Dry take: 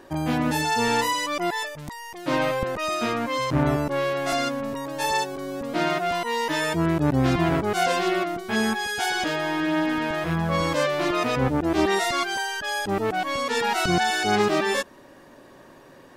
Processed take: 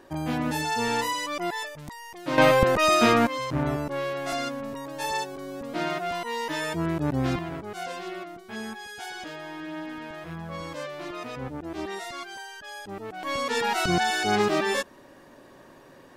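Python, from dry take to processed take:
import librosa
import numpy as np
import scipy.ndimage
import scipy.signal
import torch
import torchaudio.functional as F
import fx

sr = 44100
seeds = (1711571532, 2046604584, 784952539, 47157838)

y = fx.gain(x, sr, db=fx.steps((0.0, -4.0), (2.38, 6.5), (3.27, -5.0), (7.39, -12.5), (13.23, -2.0)))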